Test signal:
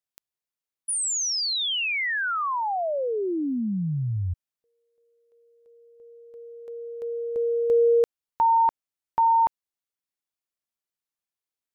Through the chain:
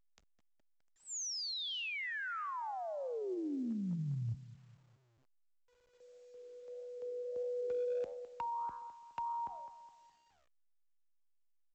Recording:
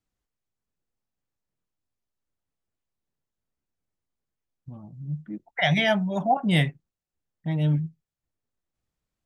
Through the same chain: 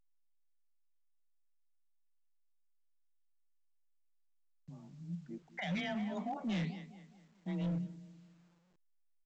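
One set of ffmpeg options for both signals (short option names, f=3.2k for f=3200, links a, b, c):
-filter_complex "[0:a]adynamicequalizer=threshold=0.0158:dfrequency=630:dqfactor=1.2:tfrequency=630:tqfactor=1.2:attack=5:release=100:ratio=0.438:range=1.5:mode=cutabove:tftype=bell,flanger=delay=9.1:depth=7.9:regen=86:speed=1.6:shape=sinusoidal,agate=range=-39dB:threshold=-58dB:ratio=16:release=39:detection=rms,afreqshift=23,asplit=2[a][b];[b]adelay=208,lowpass=f=2.5k:p=1,volume=-17dB,asplit=2[c][d];[d]adelay=208,lowpass=f=2.5k:p=1,volume=0.43,asplit=2[e][f];[f]adelay=208,lowpass=f=2.5k:p=1,volume=0.43,asplit=2[g][h];[h]adelay=208,lowpass=f=2.5k:p=1,volume=0.43[i];[c][e][g][i]amix=inputs=4:normalize=0[j];[a][j]amix=inputs=2:normalize=0,acrossover=split=350[k][l];[l]acompressor=threshold=-32dB:ratio=6:attack=9.2:release=126:knee=2.83:detection=peak[m];[k][m]amix=inputs=2:normalize=0,aresample=16000,asoftclip=type=hard:threshold=-26dB,aresample=44100,volume=-6.5dB" -ar 16000 -c:a pcm_alaw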